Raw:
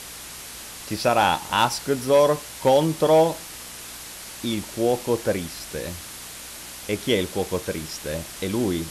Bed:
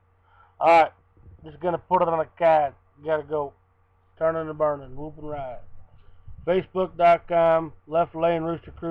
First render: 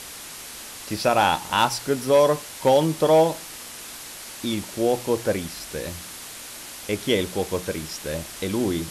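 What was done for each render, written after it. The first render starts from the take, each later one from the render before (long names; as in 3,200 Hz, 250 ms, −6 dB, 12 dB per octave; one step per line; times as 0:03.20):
hum removal 60 Hz, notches 3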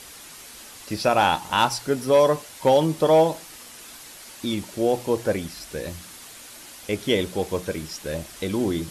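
broadband denoise 6 dB, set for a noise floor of −39 dBFS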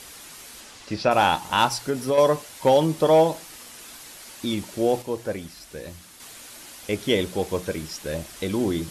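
0:00.60–0:01.10: low-pass filter 9,900 Hz → 4,000 Hz
0:01.74–0:02.18: downward compressor, threshold −18 dBFS
0:05.02–0:06.20: clip gain −5.5 dB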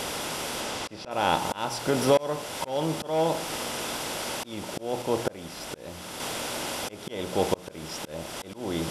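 compressor on every frequency bin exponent 0.6
volume swells 507 ms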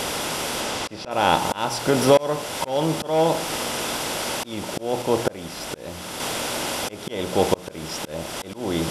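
level +5.5 dB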